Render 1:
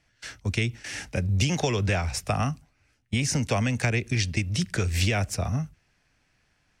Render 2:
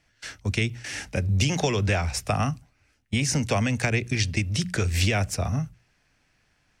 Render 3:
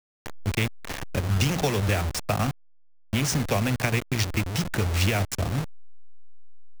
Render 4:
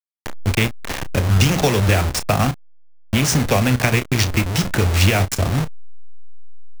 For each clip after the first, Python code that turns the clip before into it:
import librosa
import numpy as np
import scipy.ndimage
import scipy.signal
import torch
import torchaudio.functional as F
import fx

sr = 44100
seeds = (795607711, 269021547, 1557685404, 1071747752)

y1 = fx.hum_notches(x, sr, base_hz=60, count=3)
y1 = F.gain(torch.from_numpy(y1), 1.5).numpy()
y2 = fx.delta_hold(y1, sr, step_db=-24.5)
y3 = fx.doubler(y2, sr, ms=32.0, db=-12.0)
y3 = F.gain(torch.from_numpy(y3), 7.5).numpy()